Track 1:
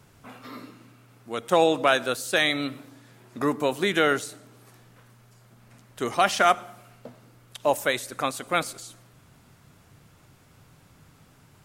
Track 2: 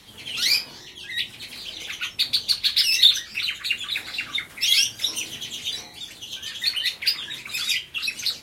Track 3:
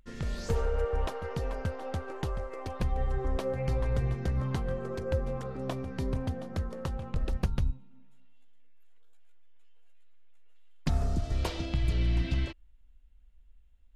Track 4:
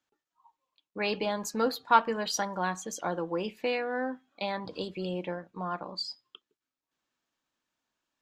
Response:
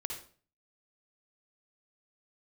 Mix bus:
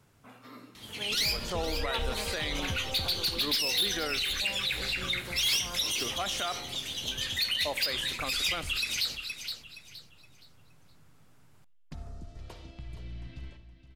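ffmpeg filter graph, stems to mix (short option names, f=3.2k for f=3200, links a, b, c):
-filter_complex "[0:a]volume=-8.5dB,asplit=2[a][b];[b]volume=-21.5dB[c];[1:a]asoftclip=type=hard:threshold=-18.5dB,adelay=750,volume=-1.5dB,asplit=3[d][e][f];[e]volume=-14.5dB[g];[f]volume=-9.5dB[h];[2:a]adelay=1050,volume=-5dB,afade=t=out:st=3.02:d=0.45:silence=0.237137,asplit=3[i][j][k];[j]volume=-5.5dB[l];[k]volume=-9dB[m];[3:a]volume=-10.5dB[n];[4:a]atrim=start_sample=2205[o];[c][g][l]amix=inputs=3:normalize=0[p];[p][o]afir=irnorm=-1:irlink=0[q];[h][m]amix=inputs=2:normalize=0,aecho=0:1:469|938|1407|1876:1|0.29|0.0841|0.0244[r];[a][d][i][n][q][r]amix=inputs=6:normalize=0,alimiter=limit=-22dB:level=0:latency=1:release=63"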